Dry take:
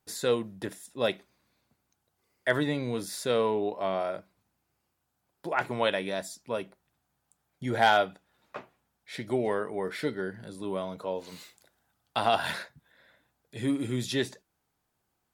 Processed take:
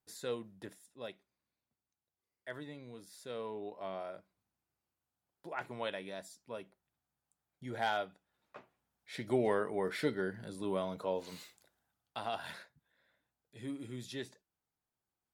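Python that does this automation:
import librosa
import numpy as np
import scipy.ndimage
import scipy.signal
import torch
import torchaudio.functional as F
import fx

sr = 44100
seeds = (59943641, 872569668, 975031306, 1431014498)

y = fx.gain(x, sr, db=fx.line((0.7, -12.0), (1.12, -18.5), (3.08, -18.5), (3.82, -12.0), (8.56, -12.0), (9.38, -2.5), (11.31, -2.5), (12.24, -13.5)))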